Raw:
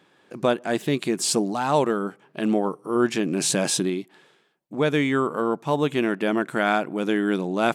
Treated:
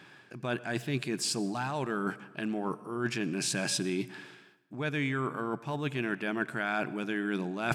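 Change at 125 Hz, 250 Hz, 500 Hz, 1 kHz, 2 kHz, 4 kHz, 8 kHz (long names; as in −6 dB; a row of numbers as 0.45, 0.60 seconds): −5.0, −9.5, −12.5, −10.0, −5.0, −6.5, −9.0 decibels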